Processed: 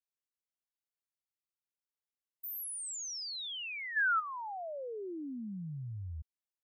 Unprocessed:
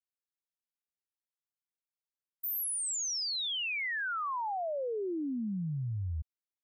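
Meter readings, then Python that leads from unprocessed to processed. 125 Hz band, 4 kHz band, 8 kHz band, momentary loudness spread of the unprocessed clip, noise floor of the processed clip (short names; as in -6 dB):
-6.5 dB, -6.5 dB, -6.5 dB, 6 LU, under -85 dBFS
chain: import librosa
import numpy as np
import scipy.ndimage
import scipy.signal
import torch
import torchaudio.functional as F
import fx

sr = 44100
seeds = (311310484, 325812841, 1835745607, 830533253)

y = fx.spec_box(x, sr, start_s=3.96, length_s=0.24, low_hz=1000.0, high_hz=12000.0, gain_db=12)
y = y * librosa.db_to_amplitude(-6.5)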